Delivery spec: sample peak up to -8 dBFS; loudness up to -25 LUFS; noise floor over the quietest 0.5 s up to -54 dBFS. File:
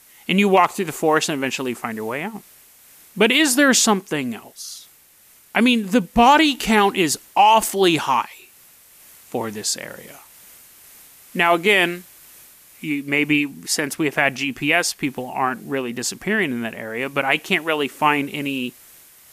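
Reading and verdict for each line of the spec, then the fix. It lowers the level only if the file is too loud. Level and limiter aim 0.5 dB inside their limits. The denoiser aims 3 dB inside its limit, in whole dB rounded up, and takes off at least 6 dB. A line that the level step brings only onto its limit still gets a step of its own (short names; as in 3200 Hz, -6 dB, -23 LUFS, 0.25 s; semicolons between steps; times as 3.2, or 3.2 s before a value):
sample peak -4.0 dBFS: fail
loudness -19.0 LUFS: fail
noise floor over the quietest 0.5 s -52 dBFS: fail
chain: gain -6.5 dB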